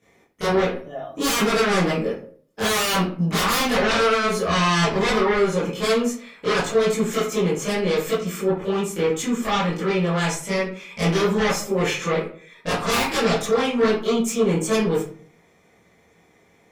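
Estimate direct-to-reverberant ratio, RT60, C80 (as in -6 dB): -12.0 dB, 0.50 s, 9.0 dB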